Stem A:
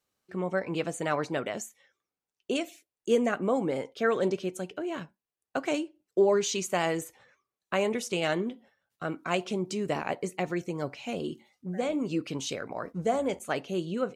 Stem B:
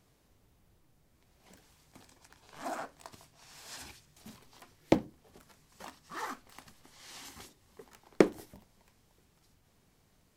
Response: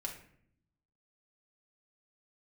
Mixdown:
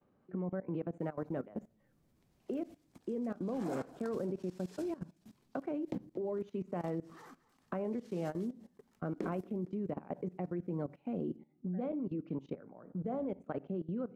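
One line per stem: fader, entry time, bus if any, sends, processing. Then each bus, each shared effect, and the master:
-10.5 dB, 0.00 s, send -10.5 dB, no echo send, low-pass 1.2 kHz 12 dB/octave; peak limiter -22 dBFS, peak gain reduction 8.5 dB; three bands compressed up and down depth 70%
4.41 s -4 dB -> 5.11 s -11 dB, 1.00 s, no send, echo send -16.5 dB, none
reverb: on, RT60 0.65 s, pre-delay 4 ms
echo: feedback delay 230 ms, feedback 38%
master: peaking EQ 200 Hz +9.5 dB 2.2 oct; level held to a coarse grid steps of 18 dB

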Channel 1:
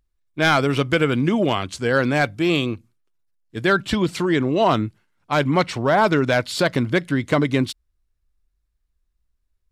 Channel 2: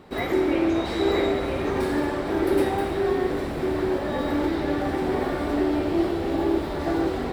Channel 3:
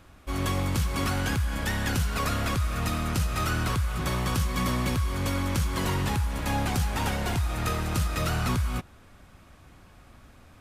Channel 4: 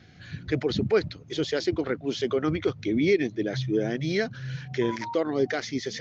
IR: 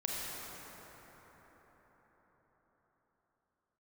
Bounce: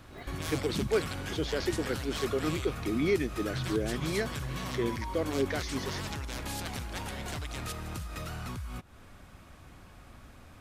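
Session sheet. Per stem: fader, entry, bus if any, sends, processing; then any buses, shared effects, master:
-16.5 dB, 0.00 s, no send, bass shelf 150 Hz +7 dB; spectrum-flattening compressor 4:1
-13.0 dB, 0.00 s, no send, peak limiter -19.5 dBFS, peak gain reduction 9.5 dB; tremolo saw up 8.8 Hz, depth 75%; auto duck -10 dB, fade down 0.20 s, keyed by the first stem
+0.5 dB, 0.00 s, no send, compression 10:1, threshold -36 dBFS, peak gain reduction 14 dB
-5.5 dB, 0.00 s, no send, none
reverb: none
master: none

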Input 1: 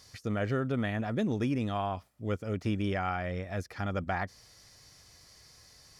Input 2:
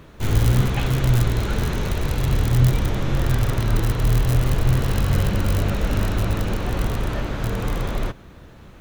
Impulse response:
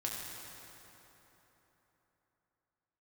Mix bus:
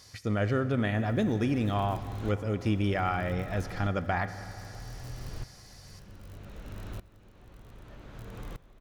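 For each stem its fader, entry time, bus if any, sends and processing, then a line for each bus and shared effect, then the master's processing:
+0.5 dB, 0.00 s, send -9.5 dB, none
-8.0 dB, 0.75 s, send -23 dB, compression 2:1, threshold -35 dBFS, peak gain reduction 13 dB; sawtooth tremolo in dB swelling 0.64 Hz, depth 20 dB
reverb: on, RT60 3.8 s, pre-delay 4 ms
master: none

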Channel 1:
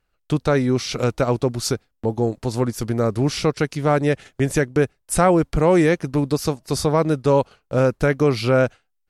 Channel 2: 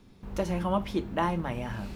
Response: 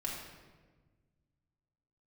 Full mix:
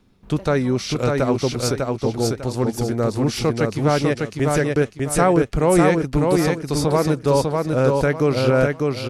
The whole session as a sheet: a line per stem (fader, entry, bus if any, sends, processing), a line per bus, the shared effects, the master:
-1.0 dB, 0.00 s, no send, echo send -3 dB, none
-1.5 dB, 0.00 s, no send, no echo send, peak limiter -21.5 dBFS, peak gain reduction 7.5 dB; auto duck -16 dB, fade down 1.25 s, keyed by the first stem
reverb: none
echo: feedback delay 599 ms, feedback 29%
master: none

